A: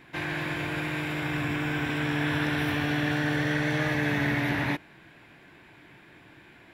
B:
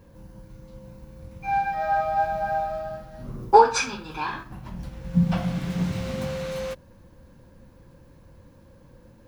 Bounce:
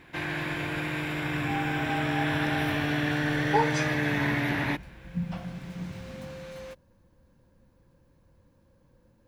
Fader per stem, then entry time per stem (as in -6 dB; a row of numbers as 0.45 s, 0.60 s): -0.5 dB, -11.0 dB; 0.00 s, 0.00 s